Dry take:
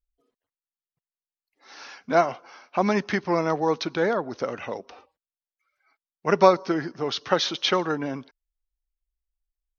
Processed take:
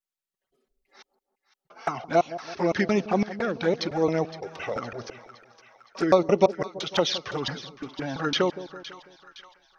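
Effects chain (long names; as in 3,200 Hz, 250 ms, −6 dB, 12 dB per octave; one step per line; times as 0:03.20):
slices reordered back to front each 170 ms, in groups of 5
notch filter 1,000 Hz, Q 11
in parallel at −1 dB: downward compressor 6 to 1, threshold −32 dBFS, peak gain reduction 19 dB
on the sum: flanger swept by the level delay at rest 5.3 ms, full sweep at −16.5 dBFS
echo with a time of its own for lows and highs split 860 Hz, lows 165 ms, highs 514 ms, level −14 dB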